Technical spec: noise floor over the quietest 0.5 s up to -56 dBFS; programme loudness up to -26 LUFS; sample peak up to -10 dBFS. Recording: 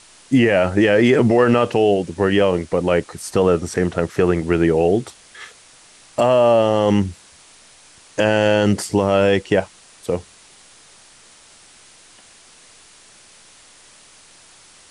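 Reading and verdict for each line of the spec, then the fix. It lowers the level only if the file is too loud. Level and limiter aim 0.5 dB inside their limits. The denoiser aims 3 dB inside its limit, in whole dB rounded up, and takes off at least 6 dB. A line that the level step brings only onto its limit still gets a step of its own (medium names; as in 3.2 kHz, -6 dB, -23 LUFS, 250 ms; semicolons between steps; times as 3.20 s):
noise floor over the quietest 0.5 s -48 dBFS: fail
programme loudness -17.5 LUFS: fail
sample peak -5.0 dBFS: fail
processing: trim -9 dB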